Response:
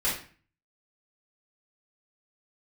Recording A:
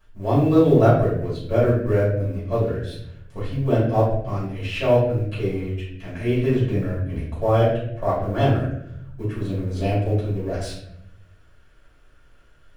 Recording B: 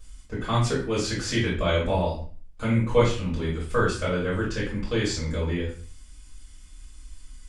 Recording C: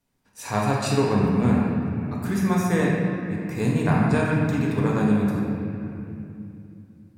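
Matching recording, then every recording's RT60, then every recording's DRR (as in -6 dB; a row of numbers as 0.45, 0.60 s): B; 0.75, 0.40, 2.8 s; -10.5, -8.0, -4.5 dB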